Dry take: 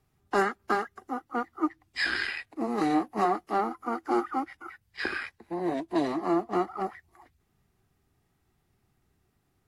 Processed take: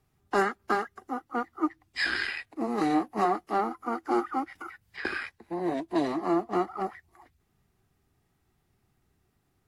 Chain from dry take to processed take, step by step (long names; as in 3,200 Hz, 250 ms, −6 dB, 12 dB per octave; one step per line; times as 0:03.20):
0:04.55–0:05.05: multiband upward and downward compressor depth 100%